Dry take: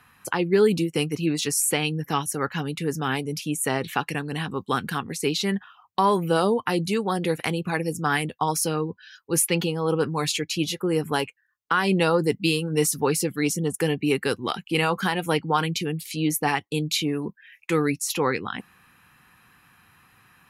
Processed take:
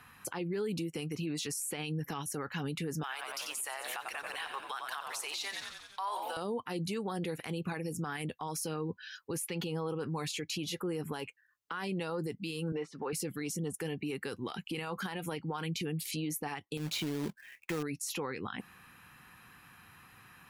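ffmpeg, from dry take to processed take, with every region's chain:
ffmpeg -i in.wav -filter_complex "[0:a]asettb=1/sr,asplit=3[link_01][link_02][link_03];[link_01]atrim=end=3.034[link_04];[link_02]atrim=start=3.03:end=6.37,asetpts=PTS-STARTPTS,afade=type=in:duration=0.004:curve=qsin,afade=type=out:start_time=3.336:duration=0.004:curve=qsin,highpass=frequency=710:width=0.5412,highpass=frequency=710:width=1.3066,aeval=exprs='sgn(val(0))*max(abs(val(0))-0.002,0)':channel_layout=same,asplit=9[link_05][link_06][link_07][link_08][link_09][link_10][link_11][link_12][link_13];[link_06]adelay=90,afreqshift=-77,volume=-12dB[link_14];[link_07]adelay=180,afreqshift=-154,volume=-15.9dB[link_15];[link_08]adelay=270,afreqshift=-231,volume=-19.8dB[link_16];[link_09]adelay=360,afreqshift=-308,volume=-23.6dB[link_17];[link_10]adelay=450,afreqshift=-385,volume=-27.5dB[link_18];[link_11]adelay=540,afreqshift=-462,volume=-31.4dB[link_19];[link_12]adelay=630,afreqshift=-539,volume=-35.3dB[link_20];[link_13]adelay=720,afreqshift=-616,volume=-39.1dB[link_21];[link_05][link_14][link_15][link_16][link_17][link_18][link_19][link_20][link_21]amix=inputs=9:normalize=0,atrim=end_sample=147294[link_22];[link_03]atrim=start=6.366[link_23];[link_04][link_22]acrossfade=duration=0.004:curve1=hsin:curve2=qsin[link_24];[link_24][link_23]acrossfade=duration=0.004:curve1=qsin:curve2=hsin,asettb=1/sr,asplit=3[link_25][link_26][link_27];[link_25]atrim=end=12.724[link_28];[link_26]atrim=start=12.72:end=13.13,asetpts=PTS-STARTPTS,afade=type=in:duration=0.004:curve=qsin,afade=type=out:start_time=0.406:duration=0.004:curve=qsin,highpass=480,lowpass=2500,aemphasis=mode=reproduction:type=bsi[link_29];[link_27]atrim=start=13.126[link_30];[link_28][link_29]acrossfade=duration=0.004:curve1=hsin:curve2=qsin[link_31];[link_31][link_30]acrossfade=duration=0.004:curve1=qsin:curve2=hsin,asettb=1/sr,asplit=3[link_32][link_33][link_34];[link_32]atrim=end=16.774[link_35];[link_33]atrim=start=16.77:end=17.83,asetpts=PTS-STARTPTS,afade=type=in:duration=0.004:curve=qsin,afade=type=out:start_time=1.056:duration=0.004:curve=qsin,highshelf=frequency=2600:gain=-10,acompressor=threshold=-27dB:ratio=16:attack=3.2:release=140:knee=1:detection=peak,acrusher=bits=2:mode=log:mix=0:aa=0.000001[link_36];[link_34]atrim=start=17.826[link_37];[link_35][link_36]acrossfade=duration=0.004:curve1=hsin:curve2=qsin[link_38];[link_38][link_37]acrossfade=duration=0.004:curve1=qsin:curve2=hsin,acompressor=threshold=-29dB:ratio=5,alimiter=level_in=4dB:limit=-24dB:level=0:latency=1:release=40,volume=-4dB" out.wav

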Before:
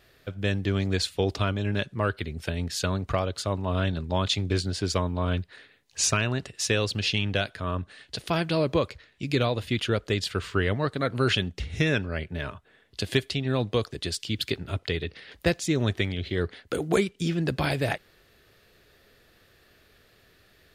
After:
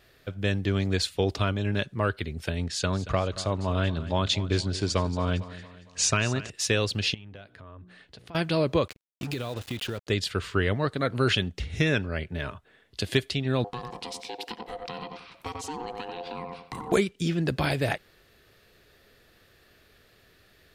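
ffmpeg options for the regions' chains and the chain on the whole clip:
ffmpeg -i in.wav -filter_complex "[0:a]asettb=1/sr,asplit=3[link_01][link_02][link_03];[link_01]atrim=end=2.644[link_04];[link_02]atrim=start=2.64:end=6.5,asetpts=PTS-STARTPTS,afade=type=in:duration=0.004:curve=qsin,afade=type=out:start_time=3.856:duration=0.004:curve=qsin,lowpass=frequency=9300:width=0.5412,lowpass=frequency=9300:width=1.3066,aecho=1:1:229|458|687|916:0.168|0.0755|0.034|0.0153,atrim=end_sample=170226[link_05];[link_03]atrim=start=6.496[link_06];[link_04][link_05]acrossfade=duration=0.004:curve1=hsin:curve2=qsin[link_07];[link_07][link_06]acrossfade=duration=0.004:curve1=qsin:curve2=hsin,asettb=1/sr,asplit=3[link_08][link_09][link_10];[link_08]atrim=end=7.144[link_11];[link_09]atrim=start=7.14:end=8.35,asetpts=PTS-STARTPTS,afade=type=in:duration=0.004:curve=qsin,afade=type=out:start_time=1.206:duration=0.004:curve=qsin,highshelf=frequency=3100:gain=-11.5,bandreject=frequency=60:width_type=h:width=6,bandreject=frequency=120:width_type=h:width=6,bandreject=frequency=180:width_type=h:width=6,bandreject=frequency=240:width_type=h:width=6,bandreject=frequency=300:width_type=h:width=6,bandreject=frequency=360:width_type=h:width=6,bandreject=frequency=420:width_type=h:width=6,bandreject=frequency=480:width_type=h:width=6,acompressor=threshold=-47dB:ratio=3:attack=3.2:release=140:knee=1:detection=peak[link_12];[link_10]atrim=start=8.346[link_13];[link_11][link_12]acrossfade=duration=0.004:curve1=hsin:curve2=qsin[link_14];[link_14][link_13]acrossfade=duration=0.004:curve1=qsin:curve2=hsin,asettb=1/sr,asplit=3[link_15][link_16][link_17];[link_15]atrim=end=8.884[link_18];[link_16]atrim=start=8.88:end=10.07,asetpts=PTS-STARTPTS,afade=type=in:duration=0.004:curve=qsin,afade=type=out:start_time=1.186:duration=0.004:curve=qsin,acrusher=bits=5:mix=0:aa=0.5,bandreject=frequency=2200:width=19,acompressor=threshold=-27dB:ratio=12:attack=3.2:release=140:knee=1:detection=peak[link_19];[link_17]atrim=start=10.066[link_20];[link_18][link_19]acrossfade=duration=0.004:curve1=hsin:curve2=qsin[link_21];[link_21][link_20]acrossfade=duration=0.004:curve1=qsin:curve2=hsin,asettb=1/sr,asplit=3[link_22][link_23][link_24];[link_22]atrim=end=13.644[link_25];[link_23]atrim=start=13.64:end=16.92,asetpts=PTS-STARTPTS,afade=type=in:duration=0.004:curve=qsin,afade=type=out:start_time=3.276:duration=0.004:curve=qsin,asplit=2[link_26][link_27];[link_27]adelay=90,lowpass=frequency=1600:poles=1,volume=-6.5dB,asplit=2[link_28][link_29];[link_29]adelay=90,lowpass=frequency=1600:poles=1,volume=0.26,asplit=2[link_30][link_31];[link_31]adelay=90,lowpass=frequency=1600:poles=1,volume=0.26[link_32];[link_26][link_28][link_30][link_32]amix=inputs=4:normalize=0,atrim=end_sample=144648,acompressor=threshold=-31dB:ratio=3:attack=3.2:release=140:knee=1:detection=peak,aeval=exprs='val(0)*sin(2*PI*610*n/s)':channel_layout=same[link_33];[link_24]atrim=start=16.916[link_34];[link_25][link_33]acrossfade=duration=0.004:curve1=hsin:curve2=qsin[link_35];[link_35][link_34]acrossfade=duration=0.004:curve1=qsin:curve2=hsin" out.wav

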